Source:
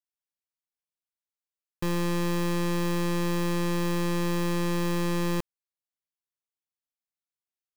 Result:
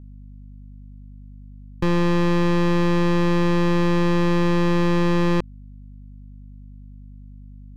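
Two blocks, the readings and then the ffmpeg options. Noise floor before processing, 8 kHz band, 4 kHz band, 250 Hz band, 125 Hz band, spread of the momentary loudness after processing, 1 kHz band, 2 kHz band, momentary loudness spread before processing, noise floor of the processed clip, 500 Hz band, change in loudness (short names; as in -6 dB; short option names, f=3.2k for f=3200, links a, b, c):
under -85 dBFS, n/a, +4.0 dB, +8.5 dB, +8.5 dB, 3 LU, +8.0 dB, +7.0 dB, 3 LU, -41 dBFS, +8.5 dB, +8.0 dB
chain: -filter_complex "[0:a]aeval=exprs='val(0)+0.00398*(sin(2*PI*50*n/s)+sin(2*PI*2*50*n/s)/2+sin(2*PI*3*50*n/s)/3+sin(2*PI*4*50*n/s)/4+sin(2*PI*5*50*n/s)/5)':c=same,aemphasis=mode=reproduction:type=cd,acrossover=split=6200[a][b];[b]acompressor=threshold=-59dB:ratio=4:attack=1:release=60[c];[a][c]amix=inputs=2:normalize=0,volume=8dB"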